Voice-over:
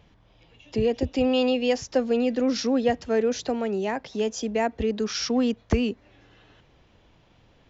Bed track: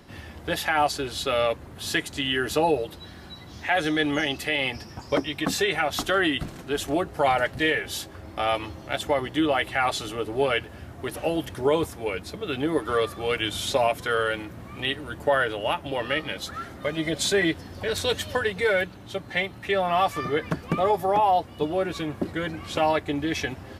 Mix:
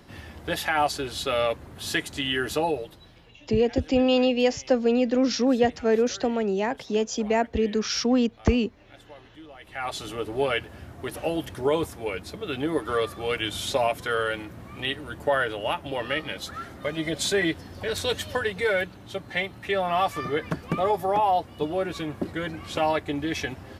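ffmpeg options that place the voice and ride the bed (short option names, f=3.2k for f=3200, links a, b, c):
-filter_complex "[0:a]adelay=2750,volume=1.5dB[a];[1:a]volume=21dB,afade=t=out:st=2.42:d=0.9:silence=0.0749894,afade=t=in:st=9.59:d=0.55:silence=0.0794328[b];[a][b]amix=inputs=2:normalize=0"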